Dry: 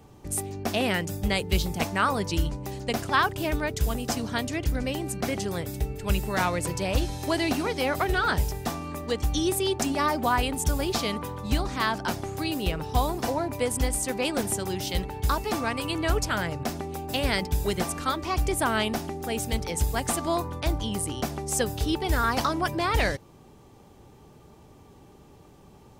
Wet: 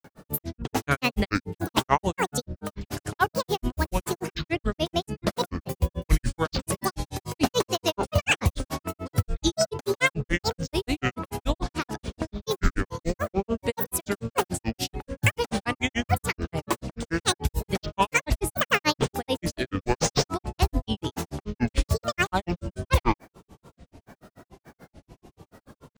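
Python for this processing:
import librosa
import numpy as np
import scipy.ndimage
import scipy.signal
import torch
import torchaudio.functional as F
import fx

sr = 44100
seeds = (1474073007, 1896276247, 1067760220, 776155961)

y = fx.granulator(x, sr, seeds[0], grain_ms=100.0, per_s=6.9, spray_ms=100.0, spread_st=12)
y = y * 10.0 ** (6.0 / 20.0)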